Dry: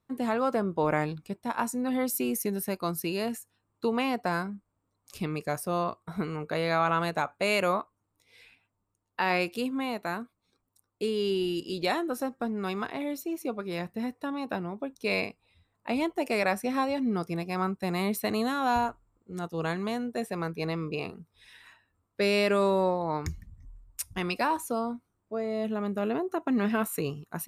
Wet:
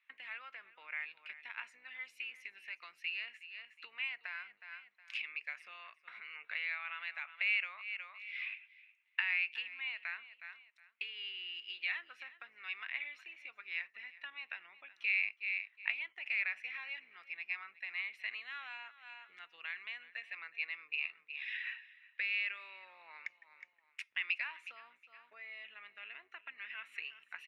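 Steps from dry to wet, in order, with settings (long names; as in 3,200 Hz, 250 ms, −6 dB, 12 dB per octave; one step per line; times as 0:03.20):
sub-octave generator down 2 octaves, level +4 dB
on a send: repeating echo 365 ms, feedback 18%, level −20 dB
on the sum: brickwall limiter −18 dBFS, peak gain reduction 5 dB
downward compressor 6 to 1, threshold −40 dBFS, peak gain reduction 17 dB
flat-topped band-pass 2,300 Hz, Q 2.4
level +16.5 dB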